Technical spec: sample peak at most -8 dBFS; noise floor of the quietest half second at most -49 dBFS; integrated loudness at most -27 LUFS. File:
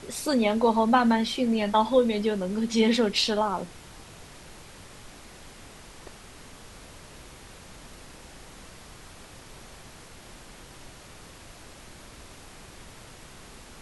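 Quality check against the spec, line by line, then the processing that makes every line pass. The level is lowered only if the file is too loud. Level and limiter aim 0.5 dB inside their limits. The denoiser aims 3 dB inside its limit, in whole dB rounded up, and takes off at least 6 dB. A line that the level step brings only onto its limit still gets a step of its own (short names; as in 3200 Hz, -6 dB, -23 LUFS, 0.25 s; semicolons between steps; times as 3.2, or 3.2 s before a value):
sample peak -9.0 dBFS: OK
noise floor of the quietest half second -47 dBFS: fail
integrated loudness -24.0 LUFS: fail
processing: gain -3.5 dB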